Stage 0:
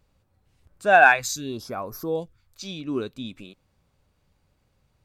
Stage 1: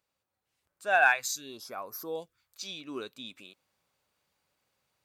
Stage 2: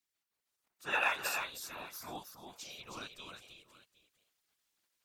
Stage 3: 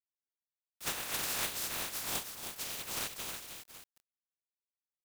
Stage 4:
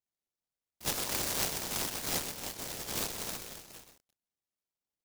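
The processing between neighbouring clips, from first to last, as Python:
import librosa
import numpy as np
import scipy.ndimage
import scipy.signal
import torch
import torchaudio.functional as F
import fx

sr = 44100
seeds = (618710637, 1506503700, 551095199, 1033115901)

y1 = fx.high_shelf(x, sr, hz=11000.0, db=5.5)
y1 = fx.rider(y1, sr, range_db=3, speed_s=2.0)
y1 = fx.highpass(y1, sr, hz=900.0, slope=6)
y1 = y1 * 10.0 ** (-5.0 / 20.0)
y2 = fx.spec_gate(y1, sr, threshold_db=-10, keep='weak')
y2 = fx.echo_multitap(y2, sr, ms=(316, 766), db=(-6.0, -19.0))
y2 = fx.whisperise(y2, sr, seeds[0])
y3 = fx.spec_flatten(y2, sr, power=0.16)
y3 = fx.over_compress(y3, sr, threshold_db=-40.0, ratio=-1.0)
y3 = fx.quant_companded(y3, sr, bits=4)
y3 = y3 * 10.0 ** (4.5 / 20.0)
y4 = fx.lowpass_res(y3, sr, hz=1100.0, q=2.4)
y4 = y4 + 10.0 ** (-8.5 / 20.0) * np.pad(y4, (int(127 * sr / 1000.0), 0))[:len(y4)]
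y4 = fx.noise_mod_delay(y4, sr, seeds[1], noise_hz=5400.0, depth_ms=0.3)
y4 = y4 * 10.0 ** (6.0 / 20.0)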